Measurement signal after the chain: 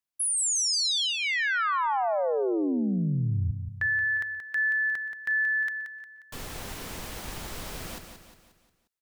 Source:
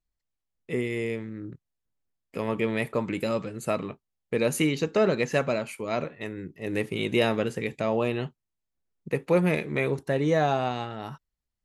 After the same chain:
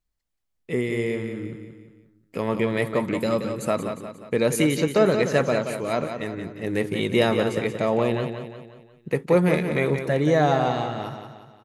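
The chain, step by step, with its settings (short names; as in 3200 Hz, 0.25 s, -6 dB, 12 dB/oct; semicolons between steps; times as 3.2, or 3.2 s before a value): dynamic EQ 2600 Hz, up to -7 dB, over -51 dBFS, Q 6.3; on a send: feedback echo 0.178 s, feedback 47%, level -8 dB; on the sum: gain +3.5 dB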